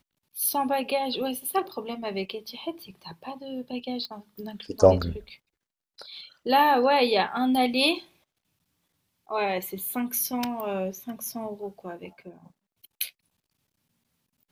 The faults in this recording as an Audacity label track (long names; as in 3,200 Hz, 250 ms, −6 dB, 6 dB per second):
4.050000	4.050000	click −21 dBFS